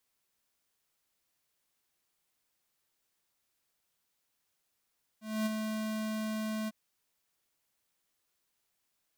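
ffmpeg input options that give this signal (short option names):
-f lavfi -i "aevalsrc='0.0316*(2*lt(mod(217*t,1),0.5)-1)':d=1.501:s=44100,afade=t=in:d=0.25,afade=t=out:st=0.25:d=0.021:silence=0.562,afade=t=out:st=1.47:d=0.031"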